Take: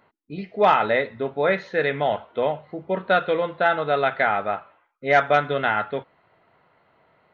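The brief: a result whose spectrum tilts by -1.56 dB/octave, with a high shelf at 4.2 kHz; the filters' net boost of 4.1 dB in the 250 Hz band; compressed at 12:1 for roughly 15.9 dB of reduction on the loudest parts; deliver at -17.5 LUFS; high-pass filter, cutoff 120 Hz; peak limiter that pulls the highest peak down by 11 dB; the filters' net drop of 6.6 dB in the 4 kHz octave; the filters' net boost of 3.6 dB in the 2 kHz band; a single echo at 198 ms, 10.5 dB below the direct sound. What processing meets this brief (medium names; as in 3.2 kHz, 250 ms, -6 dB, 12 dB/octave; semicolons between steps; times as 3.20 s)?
high-pass 120 Hz; peaking EQ 250 Hz +6 dB; peaking EQ 2 kHz +7.5 dB; peaking EQ 4 kHz -8 dB; treble shelf 4.2 kHz -7 dB; compression 12:1, threshold -27 dBFS; peak limiter -26.5 dBFS; delay 198 ms -10.5 dB; trim +19.5 dB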